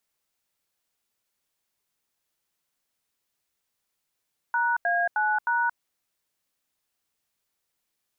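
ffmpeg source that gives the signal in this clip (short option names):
-f lavfi -i "aevalsrc='0.0631*clip(min(mod(t,0.31),0.226-mod(t,0.31))/0.002,0,1)*(eq(floor(t/0.31),0)*(sin(2*PI*941*mod(t,0.31))+sin(2*PI*1477*mod(t,0.31)))+eq(floor(t/0.31),1)*(sin(2*PI*697*mod(t,0.31))+sin(2*PI*1633*mod(t,0.31)))+eq(floor(t/0.31),2)*(sin(2*PI*852*mod(t,0.31))+sin(2*PI*1477*mod(t,0.31)))+eq(floor(t/0.31),3)*(sin(2*PI*941*mod(t,0.31))+sin(2*PI*1477*mod(t,0.31))))':d=1.24:s=44100"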